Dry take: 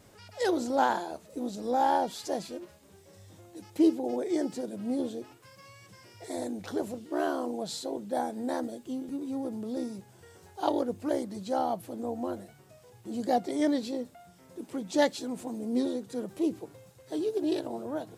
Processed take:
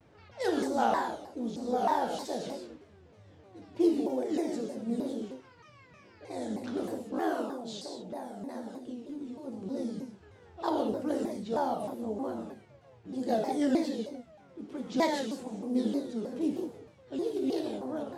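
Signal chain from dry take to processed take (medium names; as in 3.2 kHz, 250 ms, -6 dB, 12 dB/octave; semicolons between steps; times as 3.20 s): level-controlled noise filter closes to 2.7 kHz, open at -26.5 dBFS; peaking EQ 240 Hz +4 dB 0.23 oct; 7.41–9.49 s: compression, threshold -34 dBFS, peak gain reduction 9 dB; gated-style reverb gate 210 ms flat, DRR 0.5 dB; vibrato with a chosen wave saw down 3.2 Hz, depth 250 cents; trim -4.5 dB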